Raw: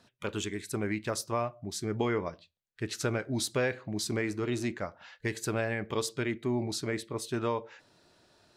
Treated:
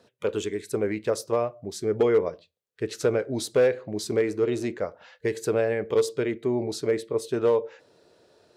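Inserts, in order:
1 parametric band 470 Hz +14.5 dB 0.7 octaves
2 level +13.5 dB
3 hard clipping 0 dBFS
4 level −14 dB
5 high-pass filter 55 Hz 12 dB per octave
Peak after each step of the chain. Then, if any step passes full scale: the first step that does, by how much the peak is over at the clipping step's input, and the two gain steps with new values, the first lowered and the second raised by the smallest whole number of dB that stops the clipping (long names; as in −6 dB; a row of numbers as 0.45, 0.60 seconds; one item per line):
−9.5, +4.0, 0.0, −14.0, −12.5 dBFS
step 2, 4.0 dB
step 2 +9.5 dB, step 4 −10 dB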